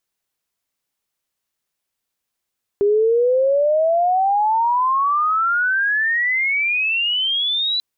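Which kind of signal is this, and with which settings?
glide logarithmic 400 Hz → 4,000 Hz −12.5 dBFS → −17.5 dBFS 4.99 s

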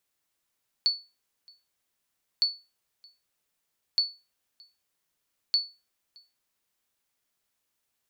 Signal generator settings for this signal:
ping with an echo 4,450 Hz, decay 0.28 s, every 1.56 s, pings 4, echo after 0.62 s, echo −29 dB −16 dBFS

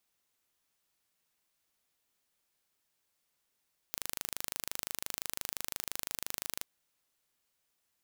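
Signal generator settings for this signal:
impulse train 25.8 per second, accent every 0, −8.5 dBFS 2.70 s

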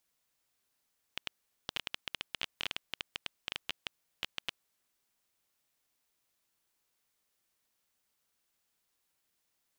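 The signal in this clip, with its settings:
Geiger counter clicks 8.8 per second −16.5 dBFS 4.22 s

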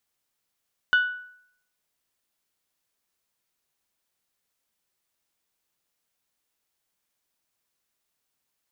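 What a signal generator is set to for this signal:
struck glass bell, lowest mode 1,480 Hz, decay 0.66 s, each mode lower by 11.5 dB, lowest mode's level −14 dB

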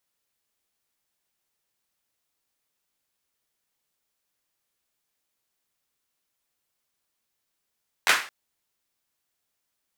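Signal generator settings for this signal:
synth clap length 0.22 s, bursts 3, apart 11 ms, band 1,600 Hz, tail 0.39 s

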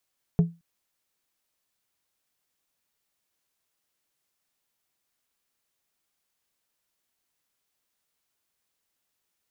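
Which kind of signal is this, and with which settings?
struck glass plate, length 0.22 s, lowest mode 168 Hz, decay 0.25 s, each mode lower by 12 dB, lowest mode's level −12.5 dB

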